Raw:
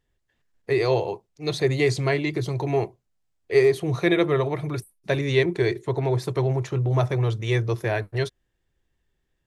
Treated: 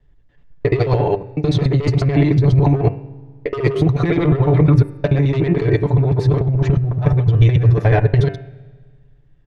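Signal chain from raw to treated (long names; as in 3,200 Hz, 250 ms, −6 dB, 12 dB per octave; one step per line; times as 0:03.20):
reversed piece by piece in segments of 72 ms
head-to-tape spacing loss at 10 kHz 23 dB
comb filter 6.9 ms, depth 55%
sine wavefolder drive 9 dB, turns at −4.5 dBFS
hum removal 97.69 Hz, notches 30
compressor whose output falls as the input rises −13 dBFS, ratio −0.5
low-shelf EQ 160 Hz +10.5 dB
convolution reverb RT60 1.7 s, pre-delay 3 ms, DRR 18.5 dB
level −4.5 dB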